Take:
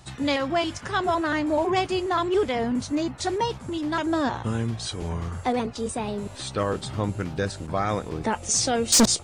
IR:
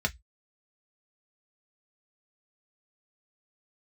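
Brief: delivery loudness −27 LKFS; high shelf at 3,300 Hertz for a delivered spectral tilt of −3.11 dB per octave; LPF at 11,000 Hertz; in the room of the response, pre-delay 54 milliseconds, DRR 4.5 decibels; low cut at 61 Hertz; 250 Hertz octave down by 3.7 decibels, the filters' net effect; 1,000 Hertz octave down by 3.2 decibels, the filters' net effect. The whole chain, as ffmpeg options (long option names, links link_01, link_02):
-filter_complex "[0:a]highpass=61,lowpass=11000,equalizer=frequency=250:width_type=o:gain=-4.5,equalizer=frequency=1000:width_type=o:gain=-4.5,highshelf=frequency=3300:gain=5,asplit=2[link_01][link_02];[1:a]atrim=start_sample=2205,adelay=54[link_03];[link_02][link_03]afir=irnorm=-1:irlink=0,volume=-12dB[link_04];[link_01][link_04]amix=inputs=2:normalize=0,volume=-2.5dB"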